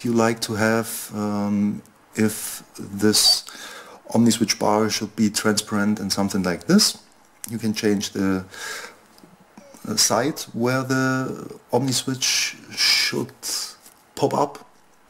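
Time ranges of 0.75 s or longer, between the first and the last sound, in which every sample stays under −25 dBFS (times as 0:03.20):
0:08.85–0:09.77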